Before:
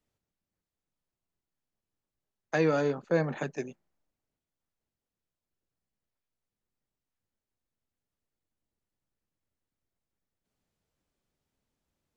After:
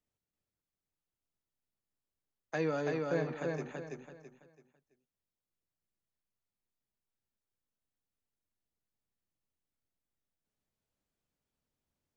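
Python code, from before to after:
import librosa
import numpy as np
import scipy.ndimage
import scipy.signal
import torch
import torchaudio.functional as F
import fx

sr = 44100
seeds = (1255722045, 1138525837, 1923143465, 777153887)

y = fx.echo_feedback(x, sr, ms=332, feedback_pct=32, wet_db=-3.0)
y = y * 10.0 ** (-7.5 / 20.0)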